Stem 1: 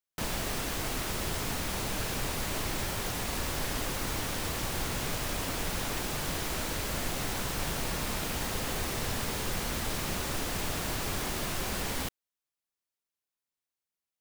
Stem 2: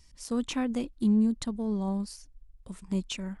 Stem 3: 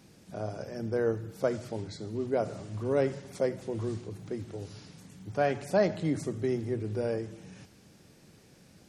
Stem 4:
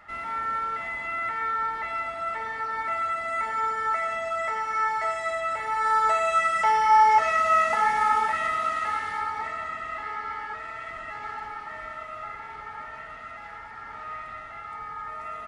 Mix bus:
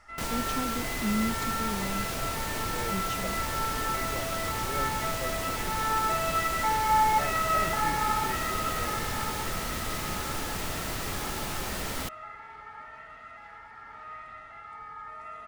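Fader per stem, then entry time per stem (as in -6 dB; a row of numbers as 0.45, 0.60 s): -0.5, -5.5, -12.0, -6.0 dB; 0.00, 0.00, 1.80, 0.00 s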